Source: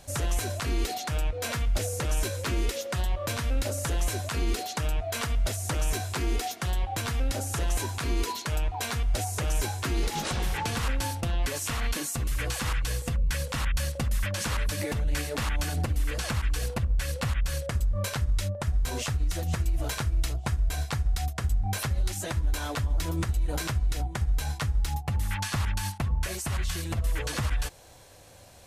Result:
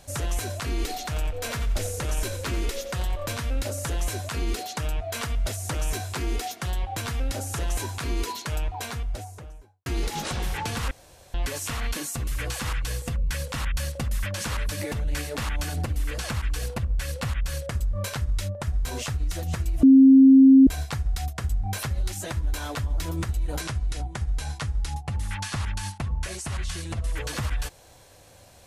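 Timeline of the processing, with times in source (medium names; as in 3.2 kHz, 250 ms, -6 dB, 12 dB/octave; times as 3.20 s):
0.69–3.33 s: frequency-shifting echo 89 ms, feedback 38%, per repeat -32 Hz, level -12 dB
8.59–9.86 s: studio fade out
10.91–11.34 s: room tone
19.83–20.67 s: bleep 267 Hz -9 dBFS
23.61–27.17 s: elliptic low-pass 11 kHz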